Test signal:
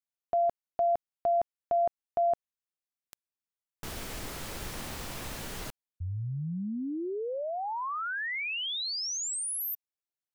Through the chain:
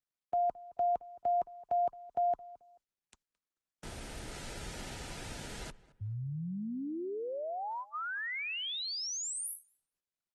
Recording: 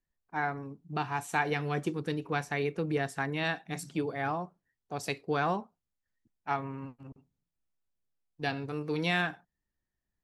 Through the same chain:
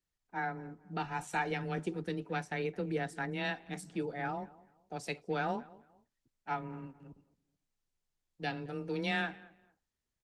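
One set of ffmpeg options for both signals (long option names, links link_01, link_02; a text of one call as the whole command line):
ffmpeg -i in.wav -filter_complex "[0:a]afreqshift=15,asuperstop=centerf=1100:order=12:qfactor=6.1,asplit=2[link_01][link_02];[link_02]adelay=218,lowpass=frequency=2200:poles=1,volume=-19.5dB,asplit=2[link_03][link_04];[link_04]adelay=218,lowpass=frequency=2200:poles=1,volume=0.28[link_05];[link_03][link_05]amix=inputs=2:normalize=0[link_06];[link_01][link_06]amix=inputs=2:normalize=0,aresample=22050,aresample=44100,volume=-4dB" -ar 48000 -c:a libopus -b:a 20k out.opus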